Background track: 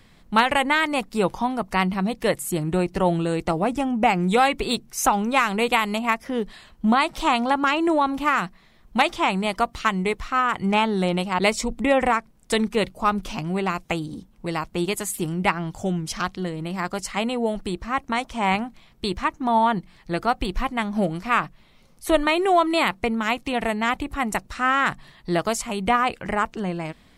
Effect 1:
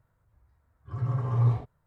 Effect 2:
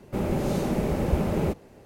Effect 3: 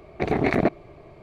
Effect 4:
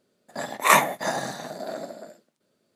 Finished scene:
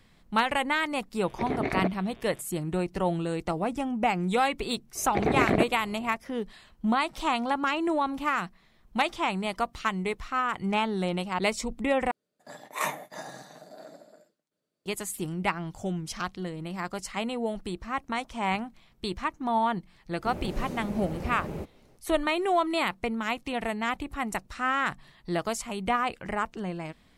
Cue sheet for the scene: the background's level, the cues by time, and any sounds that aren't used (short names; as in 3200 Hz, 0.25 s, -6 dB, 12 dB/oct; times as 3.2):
background track -6.5 dB
1.19 add 3 -8 dB + buzz 120 Hz, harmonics 31, -51 dBFS 0 dB/oct
4.95 add 3 -2.5 dB
12.11 replace with 4 -13.5 dB + comb 6.6 ms, depth 32%
20.12 add 2 -10.5 dB
not used: 1